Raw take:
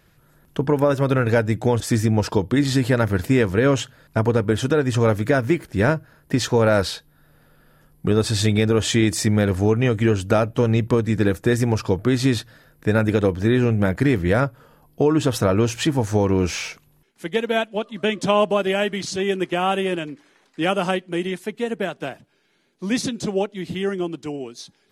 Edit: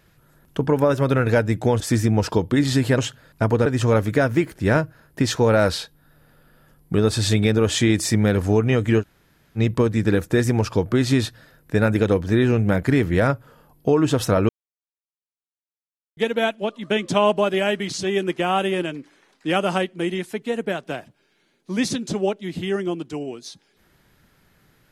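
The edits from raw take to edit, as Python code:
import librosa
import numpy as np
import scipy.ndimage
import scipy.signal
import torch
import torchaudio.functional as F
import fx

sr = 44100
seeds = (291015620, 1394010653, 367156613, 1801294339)

y = fx.edit(x, sr, fx.cut(start_s=2.98, length_s=0.75),
    fx.cut(start_s=4.41, length_s=0.38),
    fx.room_tone_fill(start_s=10.14, length_s=0.57, crossfade_s=0.06),
    fx.silence(start_s=15.62, length_s=1.68), tone=tone)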